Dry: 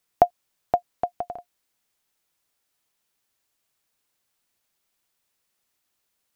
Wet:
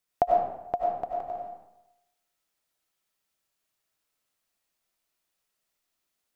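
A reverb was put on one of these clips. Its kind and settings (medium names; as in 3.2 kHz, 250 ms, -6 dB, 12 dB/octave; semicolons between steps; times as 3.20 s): algorithmic reverb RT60 0.9 s, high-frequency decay 0.7×, pre-delay 55 ms, DRR -2 dB; trim -7.5 dB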